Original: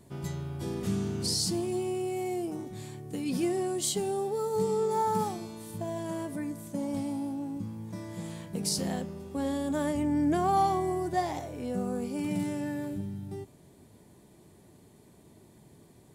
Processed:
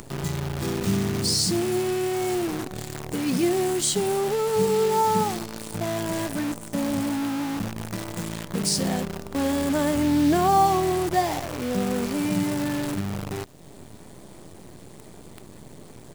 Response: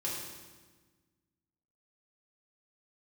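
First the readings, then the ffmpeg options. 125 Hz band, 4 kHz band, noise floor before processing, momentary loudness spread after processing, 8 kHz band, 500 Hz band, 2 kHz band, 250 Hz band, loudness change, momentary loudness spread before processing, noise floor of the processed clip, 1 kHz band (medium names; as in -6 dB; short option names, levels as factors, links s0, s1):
+6.5 dB, +8.0 dB, -57 dBFS, 11 LU, +7.5 dB, +6.5 dB, +11.0 dB, +6.5 dB, +7.0 dB, 12 LU, -45 dBFS, +6.5 dB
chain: -af "acompressor=mode=upward:threshold=0.0141:ratio=2.5,aresample=22050,aresample=44100,acrusher=bits=7:dc=4:mix=0:aa=0.000001,volume=2.11"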